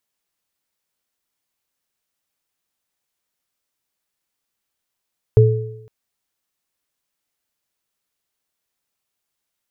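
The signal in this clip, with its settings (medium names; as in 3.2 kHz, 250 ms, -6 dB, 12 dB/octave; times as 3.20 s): sine partials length 0.51 s, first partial 115 Hz, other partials 433 Hz, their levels -4 dB, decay 0.79 s, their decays 0.82 s, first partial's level -6 dB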